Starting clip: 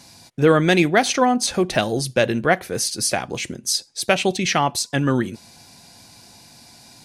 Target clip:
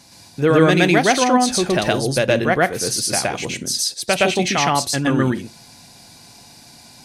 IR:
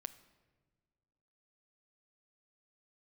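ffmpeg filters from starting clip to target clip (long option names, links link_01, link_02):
-filter_complex "[0:a]asplit=2[link_01][link_02];[1:a]atrim=start_sample=2205,atrim=end_sample=3087,adelay=117[link_03];[link_02][link_03]afir=irnorm=-1:irlink=0,volume=5.5dB[link_04];[link_01][link_04]amix=inputs=2:normalize=0,volume=-1.5dB"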